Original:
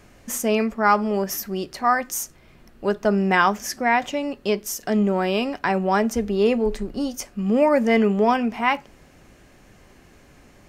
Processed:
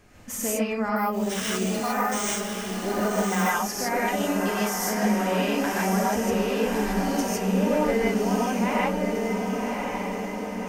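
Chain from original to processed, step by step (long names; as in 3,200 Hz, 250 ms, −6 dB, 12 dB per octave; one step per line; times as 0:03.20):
downward compressor, threshold −22 dBFS, peak gain reduction 10 dB
feedback delay with all-pass diffusion 1,130 ms, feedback 57%, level −3.5 dB
reverb whose tail is shaped and stops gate 180 ms rising, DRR −6 dB
0:00.96–0:03.50: bad sample-rate conversion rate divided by 3×, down none, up hold
level −6 dB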